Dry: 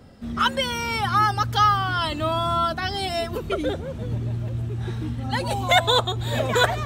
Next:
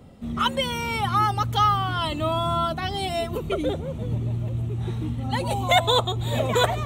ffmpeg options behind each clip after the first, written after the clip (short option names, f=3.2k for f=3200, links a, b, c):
-af "equalizer=f=160:t=o:w=0.33:g=4,equalizer=f=1.6k:t=o:w=0.33:g=-10,equalizer=f=5k:t=o:w=0.33:g=-11"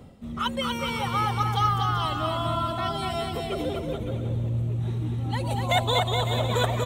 -af "areverse,acompressor=mode=upward:threshold=-29dB:ratio=2.5,areverse,aecho=1:1:240|420|555|656.2|732.2:0.631|0.398|0.251|0.158|0.1,volume=-5dB"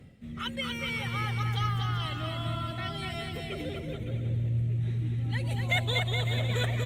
-af "equalizer=f=125:t=o:w=1:g=6,equalizer=f=1k:t=o:w=1:g=-11,equalizer=f=2k:t=o:w=1:g=11,volume=-7dB" -ar 48000 -c:a libopus -b:a 48k